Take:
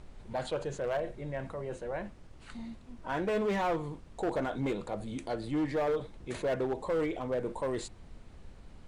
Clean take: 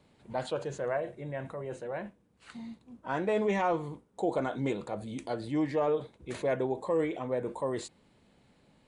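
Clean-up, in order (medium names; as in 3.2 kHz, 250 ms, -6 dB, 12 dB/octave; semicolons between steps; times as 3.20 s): clip repair -26 dBFS; noise print and reduce 14 dB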